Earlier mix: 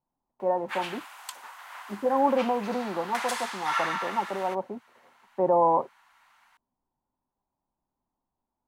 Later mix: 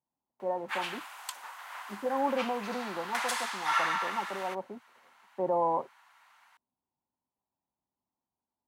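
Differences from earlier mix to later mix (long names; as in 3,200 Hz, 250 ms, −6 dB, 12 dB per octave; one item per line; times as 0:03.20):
speech −6.5 dB
master: add high-pass filter 75 Hz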